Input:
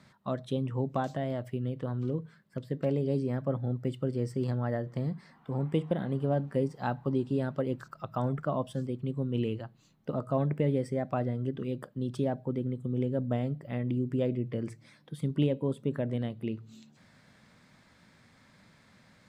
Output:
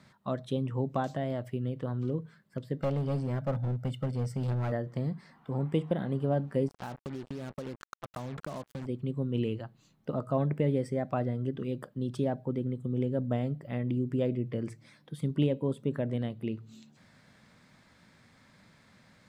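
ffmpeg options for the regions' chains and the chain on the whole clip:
ffmpeg -i in.wav -filter_complex "[0:a]asettb=1/sr,asplit=3[link_01][link_02][link_03];[link_01]atrim=end=2.794[link_04];[link_02]atrim=start=2.79:end=4.72,asetpts=PTS-STARTPTS,afade=type=in:duration=0.004:curve=qsin,afade=type=out:start_time=1.926:duration=0.004:curve=qsin,aecho=1:1:1.4:0.65,atrim=end_sample=85113,aeval=exprs='clip(val(0),-1,0.0376)':channel_layout=same[link_05];[link_03]atrim=start=4.716[link_06];[link_04][link_05]acrossfade=duration=0.004:curve1=hsin:curve2=qsin[link_07];[link_07][link_06]acrossfade=duration=0.004:curve1=qsin:curve2=hsin,asettb=1/sr,asplit=3[link_08][link_09][link_10];[link_08]atrim=end=6.684[link_11];[link_09]atrim=start=6.68:end=8.86,asetpts=PTS-STARTPTS,afade=type=in:duration=0.004:curve=qsin,afade=type=out:start_time=2.176:duration=0.004:curve=qsin,acrusher=bits=5:mix=0:aa=0.5,acompressor=threshold=-34dB:ratio=10:attack=3.2:release=140:knee=1:detection=peak[link_12];[link_10]atrim=start=8.856[link_13];[link_11][link_12]acrossfade=duration=0.004:curve1=hsin:curve2=qsin[link_14];[link_14][link_13]acrossfade=duration=0.004:curve1=qsin:curve2=hsin" out.wav

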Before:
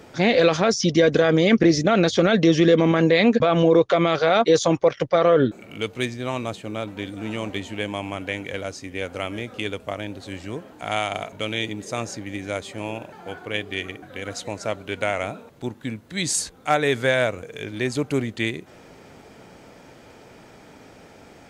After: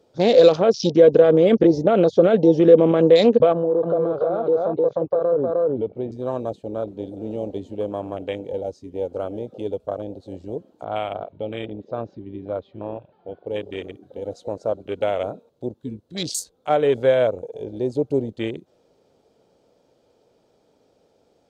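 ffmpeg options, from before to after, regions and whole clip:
ffmpeg -i in.wav -filter_complex "[0:a]asettb=1/sr,asplit=3[link_01][link_02][link_03];[link_01]atrim=end=3.524[link_04];[link_02]atrim=start=3.52:end=6.12,asetpts=PTS-STARTPTS,afade=type=in:duration=0.004:curve=qsin,afade=type=out:start_time=2.596:duration=0.004:curve=qsin,lowpass=2100,aecho=1:1:308:0.708,atrim=end_sample=114660,acompressor=threshold=-21dB:ratio=5:attack=3.2:release=140:knee=1:detection=peak[link_05];[link_03]atrim=start=6.116[link_06];[link_04][link_05]acrossfade=duration=0.004:curve1=hsin:curve2=qsin[link_07];[link_07][link_06]acrossfade=duration=0.004:curve1=qsin:curve2=hsin,asettb=1/sr,asplit=3[link_08][link_09][link_10];[link_08]atrim=end=10.844[link_11];[link_09]atrim=start=10.84:end=13.47,asetpts=PTS-STARTPTS,afade=type=in:duration=0.004:curve=qsin,afade=type=out:start_time=2.626:duration=0.004:curve=qsin,lowpass=frequency=3500:width=0.5412,lowpass=frequency=3500:width=1.3066,equalizer=frequency=430:width=1.7:gain=-4[link_12];[link_10]atrim=start=13.466[link_13];[link_11][link_12]acrossfade=duration=0.004:curve1=hsin:curve2=qsin[link_14];[link_14][link_13]acrossfade=duration=0.004:curve1=qsin:curve2=hsin,afwtdn=0.0398,equalizer=frequency=500:width_type=o:width=1:gain=10,equalizer=frequency=2000:width_type=o:width=1:gain=-10,equalizer=frequency=4000:width_type=o:width=1:gain=7,volume=-3dB" out.wav

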